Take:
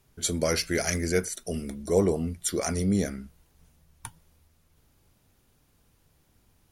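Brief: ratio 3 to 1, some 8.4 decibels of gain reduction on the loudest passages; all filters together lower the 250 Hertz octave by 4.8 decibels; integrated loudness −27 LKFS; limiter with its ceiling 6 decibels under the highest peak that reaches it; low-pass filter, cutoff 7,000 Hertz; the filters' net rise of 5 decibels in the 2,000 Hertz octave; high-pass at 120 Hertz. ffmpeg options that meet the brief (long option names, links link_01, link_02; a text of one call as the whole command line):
ffmpeg -i in.wav -af "highpass=120,lowpass=7000,equalizer=frequency=250:width_type=o:gain=-6.5,equalizer=frequency=2000:width_type=o:gain=6,acompressor=threshold=-32dB:ratio=3,volume=10.5dB,alimiter=limit=-14dB:level=0:latency=1" out.wav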